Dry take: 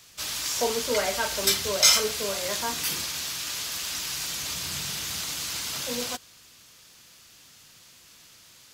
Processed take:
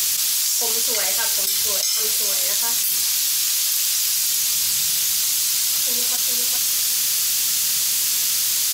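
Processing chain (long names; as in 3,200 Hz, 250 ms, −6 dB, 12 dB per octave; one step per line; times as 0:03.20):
first-order pre-emphasis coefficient 0.9
single-tap delay 410 ms −20.5 dB
envelope flattener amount 100%
level −4 dB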